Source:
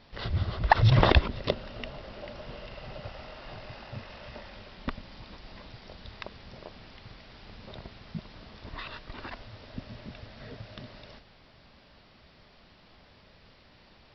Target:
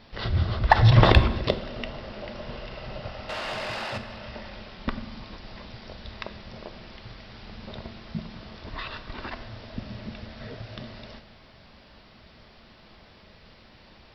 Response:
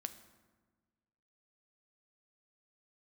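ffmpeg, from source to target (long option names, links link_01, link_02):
-filter_complex "[0:a]asplit=2[link_01][link_02];[link_02]asoftclip=type=tanh:threshold=-18.5dB,volume=-10dB[link_03];[link_01][link_03]amix=inputs=2:normalize=0,asettb=1/sr,asplit=3[link_04][link_05][link_06];[link_04]atrim=end=3.294[link_07];[link_05]atrim=start=3.29:end=3.98,asetpts=PTS-STARTPTS,afade=type=in:duration=0.004:curve=qsin,afade=type=out:start_time=0.686:duration=0.004:curve=qsin,asplit=2[link_08][link_09];[link_09]highpass=frequency=720:poles=1,volume=21dB,asoftclip=type=tanh:threshold=-25.5dB[link_10];[link_08][link_10]amix=inputs=2:normalize=0,lowpass=frequency=5100:poles=1,volume=-6dB[link_11];[link_06]atrim=start=3.976[link_12];[link_07][link_11]acrossfade=duration=0.004:curve1=hsin:curve2=qsin[link_13];[link_13][link_12]acrossfade=duration=0.004:curve1=qsin:curve2=hsin[link_14];[1:a]atrim=start_sample=2205,afade=type=out:start_time=0.39:duration=0.01,atrim=end_sample=17640[link_15];[link_14][link_15]afir=irnorm=-1:irlink=0,volume=5dB"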